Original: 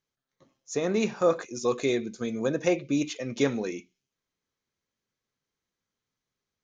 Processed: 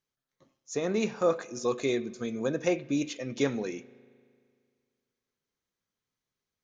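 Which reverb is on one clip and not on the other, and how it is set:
spring reverb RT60 2.1 s, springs 38 ms, chirp 60 ms, DRR 19.5 dB
level −2.5 dB

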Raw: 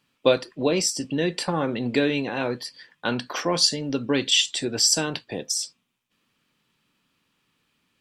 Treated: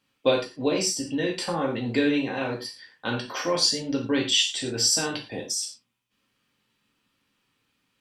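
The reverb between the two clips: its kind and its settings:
reverb whose tail is shaped and stops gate 140 ms falling, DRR −1 dB
level −5 dB

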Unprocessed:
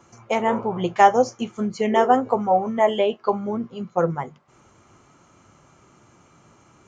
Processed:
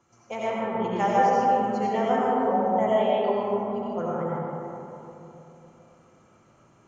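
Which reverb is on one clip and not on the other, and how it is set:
comb and all-pass reverb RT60 3.3 s, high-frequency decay 0.35×, pre-delay 45 ms, DRR −7 dB
level −12.5 dB

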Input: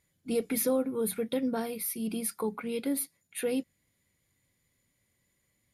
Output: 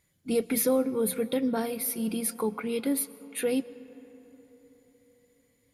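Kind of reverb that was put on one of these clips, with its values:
comb and all-pass reverb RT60 4.4 s, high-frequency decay 0.4×, pre-delay 80 ms, DRR 17.5 dB
level +3 dB

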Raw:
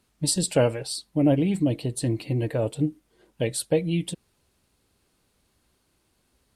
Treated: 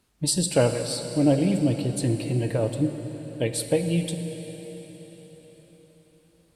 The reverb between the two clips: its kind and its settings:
dense smooth reverb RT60 4.8 s, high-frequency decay 0.95×, DRR 6.5 dB

